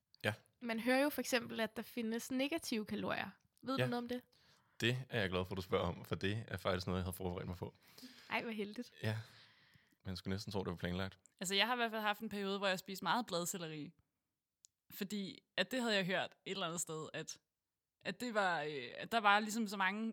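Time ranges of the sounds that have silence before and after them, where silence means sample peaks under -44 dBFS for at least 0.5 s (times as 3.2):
4.8–9.22
10.06–13.86
14.65–17.32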